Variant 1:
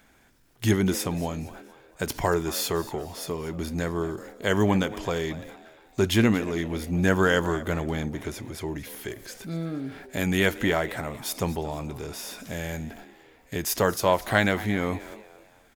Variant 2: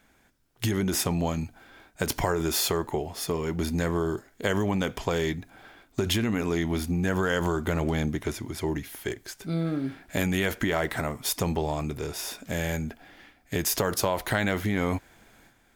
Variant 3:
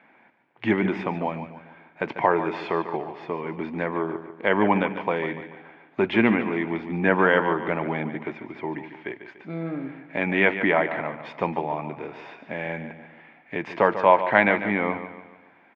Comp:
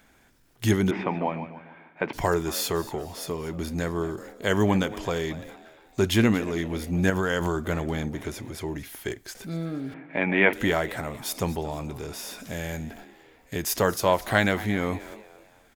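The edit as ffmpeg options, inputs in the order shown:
-filter_complex "[2:a]asplit=2[s0][s1];[1:a]asplit=2[s2][s3];[0:a]asplit=5[s4][s5][s6][s7][s8];[s4]atrim=end=0.912[s9];[s0]atrim=start=0.908:end=2.132[s10];[s5]atrim=start=2.128:end=7.102[s11];[s2]atrim=start=7.098:end=7.642[s12];[s6]atrim=start=7.638:end=8.842[s13];[s3]atrim=start=8.838:end=9.352[s14];[s7]atrim=start=9.348:end=9.942[s15];[s1]atrim=start=9.938:end=10.532[s16];[s8]atrim=start=10.528[s17];[s9][s10]acrossfade=d=0.004:c1=hsin:c2=hsin[s18];[s18][s11]acrossfade=d=0.004:c1=hsin:c2=hsin[s19];[s19][s12]acrossfade=d=0.004:c1=hsin:c2=hsin[s20];[s20][s13]acrossfade=d=0.004:c1=hsin:c2=hsin[s21];[s21][s14]acrossfade=d=0.004:c1=hsin:c2=hsin[s22];[s22][s15]acrossfade=d=0.004:c1=hsin:c2=hsin[s23];[s23][s16]acrossfade=d=0.004:c1=hsin:c2=hsin[s24];[s24][s17]acrossfade=d=0.004:c1=hsin:c2=hsin"

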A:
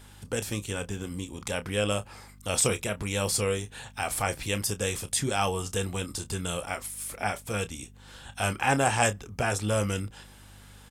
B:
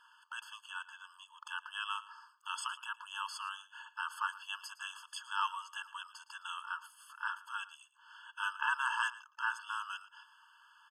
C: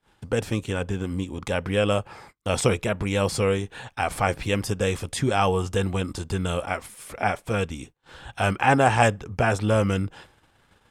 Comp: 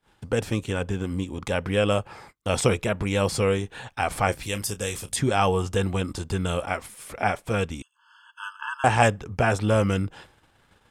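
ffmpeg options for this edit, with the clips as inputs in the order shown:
-filter_complex "[2:a]asplit=3[s0][s1][s2];[s0]atrim=end=4.322[s3];[0:a]atrim=start=4.318:end=5.162[s4];[s1]atrim=start=5.158:end=7.822[s5];[1:a]atrim=start=7.818:end=8.842[s6];[s2]atrim=start=8.838[s7];[s3][s4]acrossfade=d=0.004:c1=hsin:c2=hsin[s8];[s8][s5]acrossfade=d=0.004:c1=hsin:c2=hsin[s9];[s9][s6]acrossfade=d=0.004:c1=hsin:c2=hsin[s10];[s10][s7]acrossfade=d=0.004:c1=hsin:c2=hsin"

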